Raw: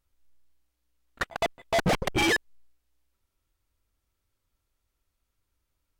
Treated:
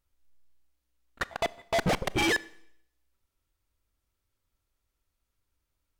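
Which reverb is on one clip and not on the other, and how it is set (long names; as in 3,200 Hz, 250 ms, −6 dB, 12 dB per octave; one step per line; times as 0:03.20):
four-comb reverb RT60 0.71 s, combs from 27 ms, DRR 19.5 dB
level −2 dB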